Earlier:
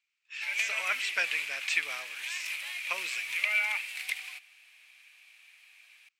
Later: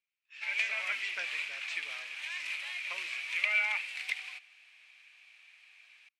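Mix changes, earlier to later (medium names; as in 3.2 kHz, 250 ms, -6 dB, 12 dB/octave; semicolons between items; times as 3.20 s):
speech -8.5 dB; master: add distance through air 74 m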